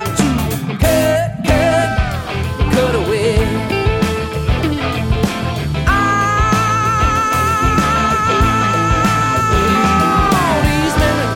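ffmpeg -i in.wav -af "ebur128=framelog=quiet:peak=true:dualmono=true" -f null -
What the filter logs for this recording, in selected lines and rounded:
Integrated loudness:
  I:         -11.4 LUFS
  Threshold: -21.4 LUFS
Loudness range:
  LRA:         3.2 LU
  Threshold: -31.6 LUFS
  LRA low:   -13.3 LUFS
  LRA high:  -10.1 LUFS
True peak:
  Peak:       -2.6 dBFS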